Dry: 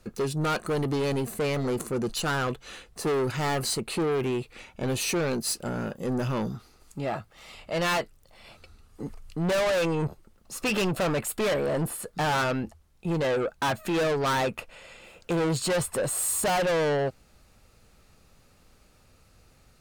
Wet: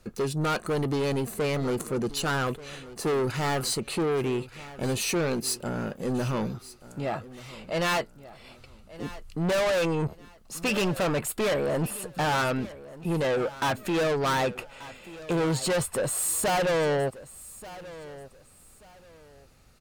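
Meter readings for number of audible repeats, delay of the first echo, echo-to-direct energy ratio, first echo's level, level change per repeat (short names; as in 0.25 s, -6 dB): 2, 1.184 s, -17.0 dB, -17.5 dB, -11.5 dB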